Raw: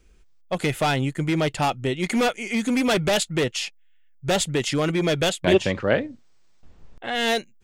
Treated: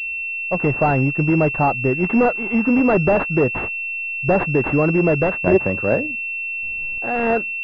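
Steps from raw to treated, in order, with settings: AGC gain up to 6 dB; pulse-width modulation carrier 2700 Hz

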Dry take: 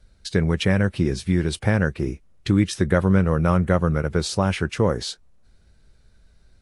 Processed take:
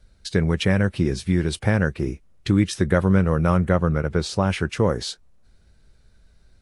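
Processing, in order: 3.69–4.5 high shelf 7700 Hz -9.5 dB

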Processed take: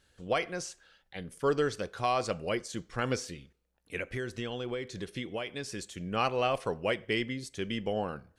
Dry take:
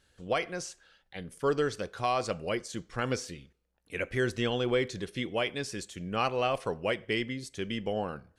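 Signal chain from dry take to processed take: 3.98–5.98 compressor 5:1, threshold -33 dBFS, peak gain reduction 10 dB

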